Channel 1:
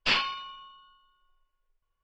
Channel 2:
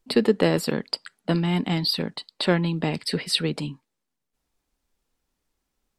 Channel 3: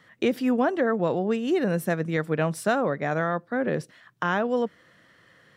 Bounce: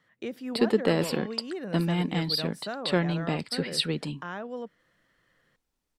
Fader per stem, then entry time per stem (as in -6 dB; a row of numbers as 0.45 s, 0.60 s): -18.5 dB, -4.0 dB, -12.0 dB; 0.95 s, 0.45 s, 0.00 s